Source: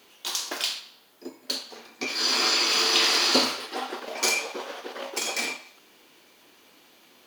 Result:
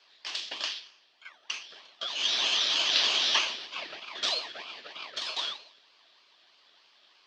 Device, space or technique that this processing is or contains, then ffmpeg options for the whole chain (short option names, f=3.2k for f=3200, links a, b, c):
voice changer toy: -af "aeval=exprs='val(0)*sin(2*PI*1400*n/s+1400*0.35/3.2*sin(2*PI*3.2*n/s))':c=same,highpass=490,equalizer=f=500:t=q:w=4:g=-8,equalizer=f=800:t=q:w=4:g=-6,equalizer=f=1.4k:t=q:w=4:g=-9,equalizer=f=2.1k:t=q:w=4:g=-7,equalizer=f=3.2k:t=q:w=4:g=5,equalizer=f=4.6k:t=q:w=4:g=3,lowpass=f=4.7k:w=0.5412,lowpass=f=4.7k:w=1.3066"